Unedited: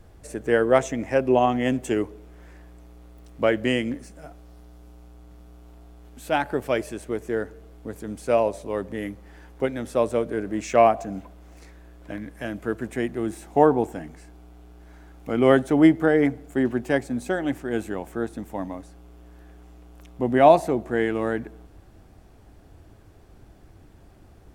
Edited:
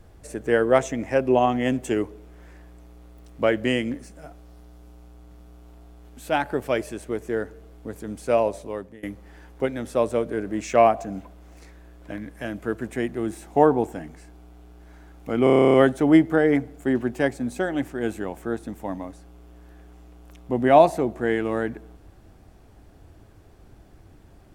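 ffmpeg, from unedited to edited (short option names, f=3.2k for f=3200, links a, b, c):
-filter_complex "[0:a]asplit=12[a][b][c][d][e][f][g][h][i][j][k][l];[a]atrim=end=9.03,asetpts=PTS-STARTPTS,afade=t=out:st=8.57:d=0.46:silence=0.0707946[m];[b]atrim=start=9.03:end=15.472,asetpts=PTS-STARTPTS,afade=t=in:d=0.004:c=hsin:silence=0.0707946[n];[c]atrim=start=15.438:end=15.472[o];[d]atrim=start=15.438:end=15.472[p];[e]atrim=start=15.438:end=15.472[q];[f]atrim=start=15.438:end=15.472[r];[g]atrim=start=15.438:end=15.472[s];[h]atrim=start=15.438:end=15.472[t];[i]atrim=start=15.438:end=15.472[u];[j]atrim=start=15.438:end=15.472[v];[k]atrim=start=15.438:end=15.472[w];[l]atrim=start=15.438[x];[m][n]concat=n=2:v=0:a=1[y];[y][o]acrossfade=d=0.004:c1=hsin:c2=hsin[z];[z][p]acrossfade=d=0.004:c1=hsin:c2=hsin[aa];[aa][q]acrossfade=d=0.004:c1=hsin:c2=hsin[ab];[ab][r]acrossfade=d=0.004:c1=hsin:c2=hsin[ac];[ac][s]acrossfade=d=0.004:c1=hsin:c2=hsin[ad];[ad][t]acrossfade=d=0.004:c1=hsin:c2=hsin[ae];[ae][u]acrossfade=d=0.004:c1=hsin:c2=hsin[af];[af][v]acrossfade=d=0.004:c1=hsin:c2=hsin[ag];[ag][w]acrossfade=d=0.004:c1=hsin:c2=hsin[ah];[ah][x]acrossfade=d=0.004:c1=hsin:c2=hsin"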